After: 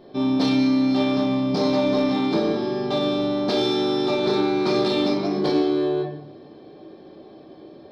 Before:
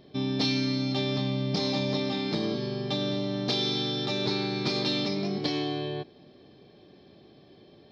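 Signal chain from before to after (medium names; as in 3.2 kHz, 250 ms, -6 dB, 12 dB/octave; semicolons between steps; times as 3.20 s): high-order bell 610 Hz +9 dB 2.9 oct; reverberation RT60 0.65 s, pre-delay 6 ms, DRR -1.5 dB; in parallel at -8.5 dB: hard clipper -20 dBFS, distortion -9 dB; on the sum: trim -4.5 dB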